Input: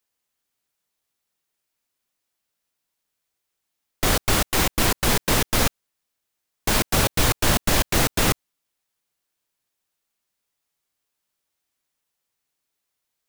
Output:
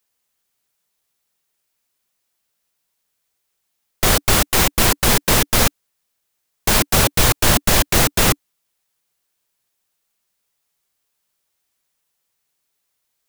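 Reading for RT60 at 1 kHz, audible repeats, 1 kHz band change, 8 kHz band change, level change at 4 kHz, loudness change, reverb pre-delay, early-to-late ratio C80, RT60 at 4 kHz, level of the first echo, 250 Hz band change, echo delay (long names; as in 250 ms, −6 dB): no reverb audible, no echo audible, +4.5 dB, +6.5 dB, +5.5 dB, +5.5 dB, no reverb audible, no reverb audible, no reverb audible, no echo audible, +3.0 dB, no echo audible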